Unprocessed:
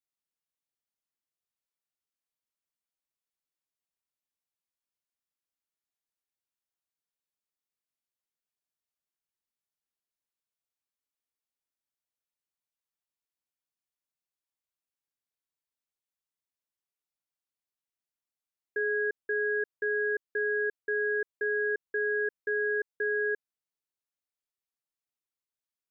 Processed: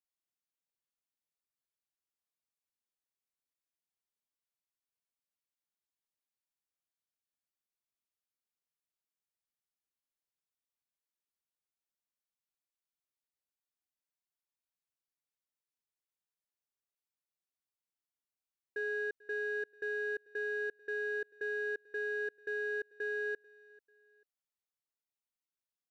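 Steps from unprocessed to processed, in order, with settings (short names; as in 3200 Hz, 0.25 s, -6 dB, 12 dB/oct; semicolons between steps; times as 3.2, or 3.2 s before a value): in parallel at -10 dB: hard clip -34 dBFS, distortion -8 dB; on the sum: feedback echo 0.441 s, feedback 35%, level -23 dB; gain -8 dB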